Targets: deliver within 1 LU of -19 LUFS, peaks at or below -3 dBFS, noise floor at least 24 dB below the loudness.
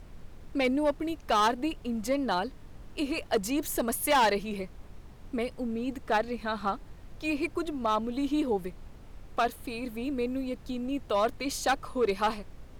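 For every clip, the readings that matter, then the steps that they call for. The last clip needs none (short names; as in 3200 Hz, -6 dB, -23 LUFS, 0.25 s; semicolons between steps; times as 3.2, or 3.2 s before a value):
clipped 1.1%; flat tops at -19.5 dBFS; noise floor -49 dBFS; noise floor target -54 dBFS; loudness -30.0 LUFS; peak -19.5 dBFS; loudness target -19.0 LUFS
-> clip repair -19.5 dBFS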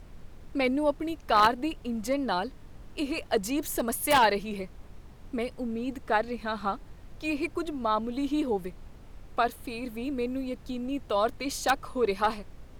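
clipped 0.0%; noise floor -49 dBFS; noise floor target -54 dBFS
-> noise print and reduce 6 dB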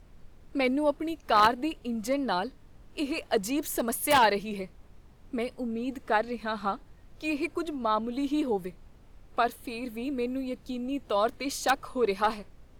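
noise floor -54 dBFS; loudness -29.5 LUFS; peak -10.5 dBFS; loudness target -19.0 LUFS
-> gain +10.5 dB; limiter -3 dBFS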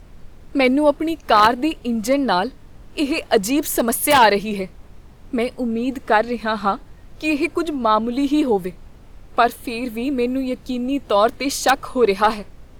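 loudness -19.5 LUFS; peak -3.0 dBFS; noise floor -44 dBFS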